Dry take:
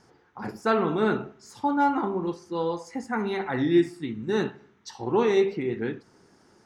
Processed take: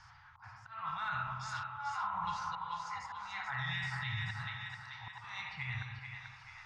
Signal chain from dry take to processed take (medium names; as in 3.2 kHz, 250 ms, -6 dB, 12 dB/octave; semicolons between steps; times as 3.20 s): elliptic band-stop 110–1000 Hz, stop band 80 dB; hum notches 60/120 Hz; reverse; compression 20:1, threshold -34 dBFS, peak gain reduction 13 dB; reverse; reverberation RT60 0.75 s, pre-delay 16 ms, DRR 5.5 dB; slow attack 713 ms; on a send: two-band feedback delay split 660 Hz, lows 163 ms, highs 436 ms, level -6.5 dB; on the sum: peak limiter -35 dBFS, peak gain reduction 8.5 dB; distance through air 140 m; trim +8 dB